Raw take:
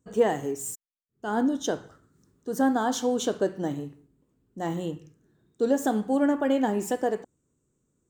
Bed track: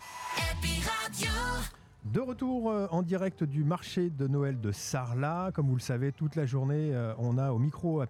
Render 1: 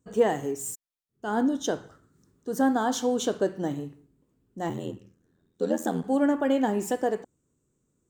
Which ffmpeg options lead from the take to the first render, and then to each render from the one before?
-filter_complex "[0:a]asettb=1/sr,asplit=3[s0][s1][s2];[s0]atrim=end=4.694[s3];[s1]atrim=start=4.69:end=6.04,asetpts=PTS-STARTPTS,afade=t=in:d=0.004:c=qsin,afade=t=out:st=1.346:d=0.004:c=qsin,aeval=exprs='val(0)*sin(2*PI*42*n/s)':c=same[s4];[s2]atrim=start=6.036[s5];[s3][s4]acrossfade=d=0.004:c1=hsin:c2=qsin[s6];[s6][s5]acrossfade=d=0.004:c1=qsin:c2=hsin"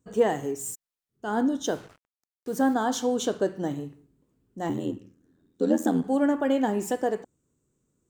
-filter_complex "[0:a]asettb=1/sr,asplit=3[s0][s1][s2];[s0]atrim=end=1.664[s3];[s1]atrim=start=1.66:end=2.74,asetpts=PTS-STARTPTS,afade=t=in:d=0.004:c=qsin,afade=t=out:st=1.076:d=0.004:c=qsin,acrusher=bits=7:mix=0:aa=0.5[s4];[s2]atrim=start=2.736[s5];[s3][s4]acrossfade=d=0.004:c1=hsin:c2=qsin[s6];[s6][s5]acrossfade=d=0.004:c1=qsin:c2=hsin,asettb=1/sr,asplit=3[s7][s8][s9];[s7]atrim=end=4.694[s10];[s8]atrim=start=4.69:end=6.07,asetpts=PTS-STARTPTS,afade=t=in:d=0.004:c=qsin,afade=t=out:st=1.376:d=0.004:c=qsin,equalizer=f=280:t=o:w=0.47:g=10[s11];[s9]atrim=start=6.066[s12];[s10][s11]acrossfade=d=0.004:c1=hsin:c2=qsin[s13];[s13][s12]acrossfade=d=0.004:c1=qsin:c2=hsin"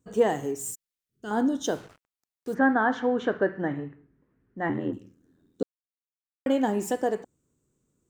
-filter_complex "[0:a]asettb=1/sr,asplit=3[s0][s1][s2];[s0]atrim=end=0.714[s3];[s1]atrim=start=0.71:end=1.31,asetpts=PTS-STARTPTS,afade=t=in:d=0.004:c=qsin,afade=t=out:st=0.596:d=0.004:c=qsin,equalizer=f=830:w=1.4:g=-13[s4];[s2]atrim=start=1.306[s5];[s3][s4]acrossfade=d=0.004:c1=hsin:c2=qsin[s6];[s6][s5]acrossfade=d=0.004:c1=qsin:c2=hsin,asplit=3[s7][s8][s9];[s7]afade=t=out:st=2.53:d=0.02[s10];[s8]lowpass=f=1800:t=q:w=3.6,afade=t=in:st=2.53:d=0.02,afade=t=out:st=4.92:d=0.02[s11];[s9]afade=t=in:st=4.92:d=0.02[s12];[s10][s11][s12]amix=inputs=3:normalize=0,asplit=3[s13][s14][s15];[s13]atrim=end=5.63,asetpts=PTS-STARTPTS,afade=t=out:st=5.626:d=0.004:c=hsin[s16];[s14]atrim=start=5.63:end=6.46,asetpts=PTS-STARTPTS,volume=0[s17];[s15]atrim=start=6.46,asetpts=PTS-STARTPTS,afade=t=in:d=0.004:c=hsin[s18];[s16][s17][s18]concat=n=3:v=0:a=1"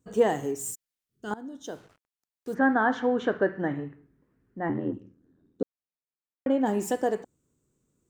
-filter_complex "[0:a]asplit=3[s0][s1][s2];[s0]afade=t=out:st=4.58:d=0.02[s3];[s1]lowpass=f=1200:p=1,afade=t=in:st=4.58:d=0.02,afade=t=out:st=6.65:d=0.02[s4];[s2]afade=t=in:st=6.65:d=0.02[s5];[s3][s4][s5]amix=inputs=3:normalize=0,asplit=2[s6][s7];[s6]atrim=end=1.34,asetpts=PTS-STARTPTS,afade=t=out:st=1.336:d=0.004:c=hsin:silence=0.0891251[s8];[s7]atrim=start=1.34,asetpts=PTS-STARTPTS,afade=t=in:d=1.49:silence=0.0891251[s9];[s8][s9]concat=n=2:v=0:a=1"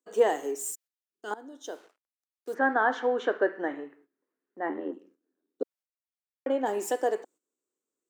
-af "agate=range=0.282:threshold=0.00224:ratio=16:detection=peak,highpass=f=330:w=0.5412,highpass=f=330:w=1.3066"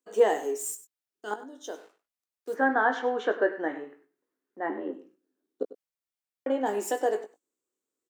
-filter_complex "[0:a]asplit=2[s0][s1];[s1]adelay=19,volume=0.355[s2];[s0][s2]amix=inputs=2:normalize=0,aecho=1:1:98:0.168"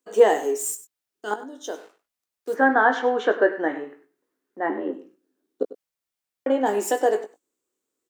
-af "volume=2"

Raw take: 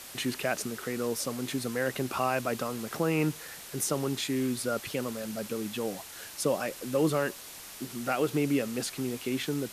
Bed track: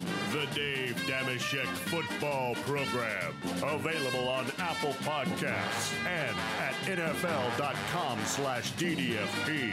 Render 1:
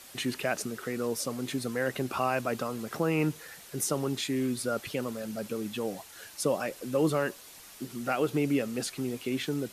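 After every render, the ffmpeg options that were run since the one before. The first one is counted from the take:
-af "afftdn=nr=6:nf=-46"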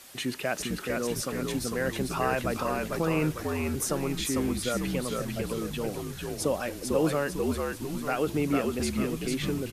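-filter_complex "[0:a]asplit=7[s0][s1][s2][s3][s4][s5][s6];[s1]adelay=448,afreqshift=-69,volume=0.708[s7];[s2]adelay=896,afreqshift=-138,volume=0.327[s8];[s3]adelay=1344,afreqshift=-207,volume=0.15[s9];[s4]adelay=1792,afreqshift=-276,volume=0.0692[s10];[s5]adelay=2240,afreqshift=-345,volume=0.0316[s11];[s6]adelay=2688,afreqshift=-414,volume=0.0146[s12];[s0][s7][s8][s9][s10][s11][s12]amix=inputs=7:normalize=0"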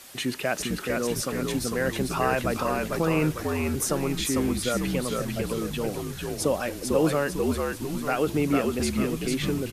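-af "volume=1.41"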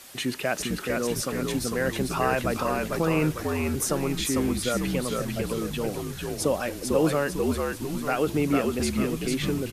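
-af anull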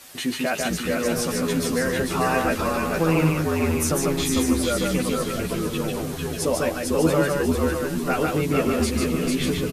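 -filter_complex "[0:a]asplit=2[s0][s1];[s1]adelay=12,volume=0.708[s2];[s0][s2]amix=inputs=2:normalize=0,aecho=1:1:147|681:0.708|0.211"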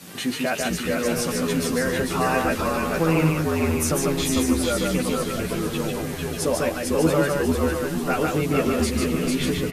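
-filter_complex "[1:a]volume=0.335[s0];[0:a][s0]amix=inputs=2:normalize=0"

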